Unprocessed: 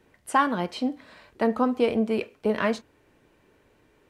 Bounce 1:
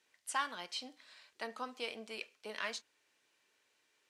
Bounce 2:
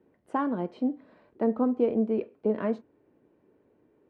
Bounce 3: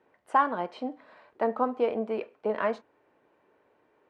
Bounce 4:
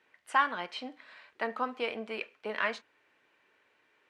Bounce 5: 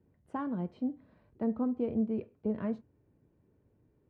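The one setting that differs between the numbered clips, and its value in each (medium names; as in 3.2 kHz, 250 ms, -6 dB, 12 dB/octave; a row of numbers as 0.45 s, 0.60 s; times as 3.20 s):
band-pass filter, frequency: 5.8 kHz, 310 Hz, 790 Hz, 2.1 kHz, 110 Hz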